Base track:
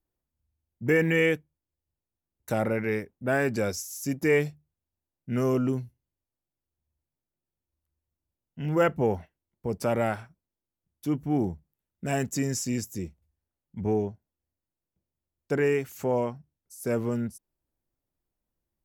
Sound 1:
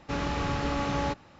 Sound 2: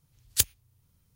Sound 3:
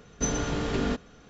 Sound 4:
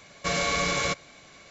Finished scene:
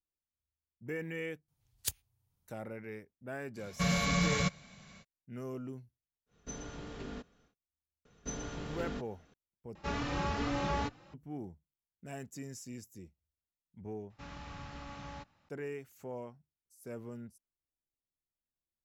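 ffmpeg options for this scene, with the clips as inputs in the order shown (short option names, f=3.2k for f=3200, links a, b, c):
-filter_complex "[3:a]asplit=2[a][b];[1:a]asplit=2[c][d];[0:a]volume=-16.5dB[e];[2:a]equalizer=f=790:w=2.3:g=6.5[f];[4:a]lowshelf=f=250:t=q:w=3:g=7[g];[c]asplit=2[h][i];[i]adelay=3.3,afreqshift=2.3[j];[h][j]amix=inputs=2:normalize=1[k];[d]equalizer=f=400:t=o:w=0.84:g=-10[l];[e]asplit=2[m][n];[m]atrim=end=9.754[o];[k]atrim=end=1.39,asetpts=PTS-STARTPTS,volume=-1.5dB[p];[n]atrim=start=11.136[q];[f]atrim=end=1.15,asetpts=PTS-STARTPTS,volume=-12.5dB,afade=t=in:d=0.004:c=hsin,afade=t=out:st=1.146:d=0.004:c=hsin,adelay=1480[r];[g]atrim=end=1.5,asetpts=PTS-STARTPTS,volume=-6.5dB,afade=t=in:d=0.05,afade=t=out:st=1.45:d=0.05,adelay=3550[s];[a]atrim=end=1.29,asetpts=PTS-STARTPTS,volume=-16dB,afade=t=in:d=0.1,afade=t=out:st=1.19:d=0.1,adelay=276066S[t];[b]atrim=end=1.29,asetpts=PTS-STARTPTS,volume=-12.5dB,afade=t=in:d=0.004:c=hsin,afade=t=out:st=1.286:d=0.004:c=hsin,adelay=8050[u];[l]atrim=end=1.39,asetpts=PTS-STARTPTS,volume=-15.5dB,afade=t=in:d=0.004:c=hsin,afade=t=out:st=1.386:d=0.004:c=hsin,adelay=14100[v];[o][p]acrossfade=d=0.004:c1=hsin:c2=hsin[w];[w][q]acrossfade=d=0.004:c1=hsin:c2=hsin[x];[x][r][s][t][u][v]amix=inputs=6:normalize=0"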